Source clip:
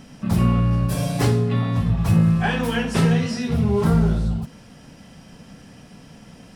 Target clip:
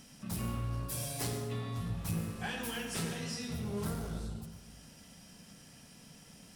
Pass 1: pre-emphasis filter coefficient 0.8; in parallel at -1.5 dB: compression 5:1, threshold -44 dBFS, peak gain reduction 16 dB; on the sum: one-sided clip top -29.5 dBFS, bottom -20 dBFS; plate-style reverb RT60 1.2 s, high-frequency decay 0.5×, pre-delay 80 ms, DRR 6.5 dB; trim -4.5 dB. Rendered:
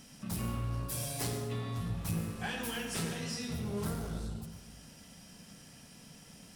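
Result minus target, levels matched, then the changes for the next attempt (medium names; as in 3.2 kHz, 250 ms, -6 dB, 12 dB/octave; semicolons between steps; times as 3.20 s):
compression: peak gain reduction -9 dB
change: compression 5:1, threshold -55.5 dBFS, peak gain reduction 25 dB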